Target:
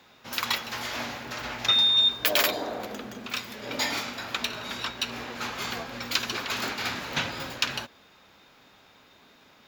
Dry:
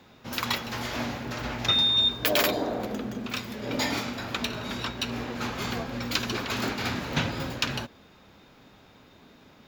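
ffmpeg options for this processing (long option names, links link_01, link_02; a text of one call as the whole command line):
ffmpeg -i in.wav -af "lowshelf=frequency=470:gain=-12,volume=2dB" out.wav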